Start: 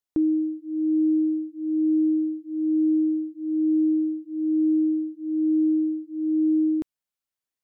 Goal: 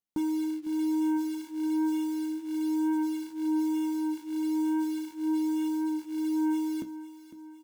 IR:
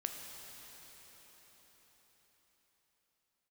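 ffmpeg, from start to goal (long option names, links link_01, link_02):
-filter_complex "[0:a]equalizer=frequency=200:width=1.2:gain=11,asplit=2[link_01][link_02];[link_02]alimiter=limit=-18.5dB:level=0:latency=1,volume=-2.5dB[link_03];[link_01][link_03]amix=inputs=2:normalize=0,acrusher=bits=4:mode=log:mix=0:aa=0.000001,flanger=delay=9.3:depth=8.7:regen=61:speed=0.34:shape=triangular,asoftclip=type=tanh:threshold=-18dB,aecho=1:1:504|1008|1512|2016|2520:0.2|0.104|0.054|0.0281|0.0146,volume=-6.5dB"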